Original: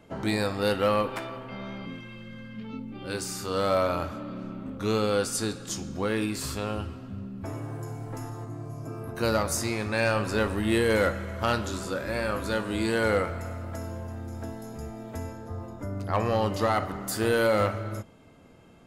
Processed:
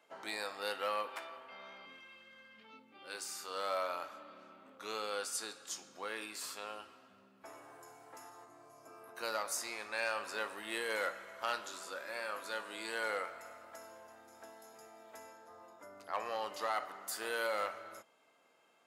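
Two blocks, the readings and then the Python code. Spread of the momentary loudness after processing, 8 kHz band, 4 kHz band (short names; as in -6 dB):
20 LU, -8.0 dB, -8.0 dB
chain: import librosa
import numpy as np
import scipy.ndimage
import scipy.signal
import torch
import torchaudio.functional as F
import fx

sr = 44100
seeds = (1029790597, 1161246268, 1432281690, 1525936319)

y = scipy.signal.sosfilt(scipy.signal.butter(2, 710.0, 'highpass', fs=sr, output='sos'), x)
y = F.gain(torch.from_numpy(y), -8.0).numpy()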